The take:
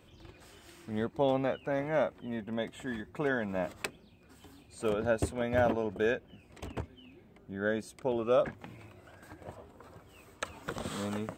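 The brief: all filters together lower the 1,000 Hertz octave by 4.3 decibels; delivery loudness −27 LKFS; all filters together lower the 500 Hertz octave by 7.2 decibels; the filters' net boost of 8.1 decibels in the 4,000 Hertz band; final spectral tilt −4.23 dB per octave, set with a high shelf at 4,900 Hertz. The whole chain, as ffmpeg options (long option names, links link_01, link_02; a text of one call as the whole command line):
ffmpeg -i in.wav -af "equalizer=frequency=500:width_type=o:gain=-8,equalizer=frequency=1000:width_type=o:gain=-3.5,equalizer=frequency=4000:width_type=o:gain=8.5,highshelf=frequency=4900:gain=4.5,volume=9.5dB" out.wav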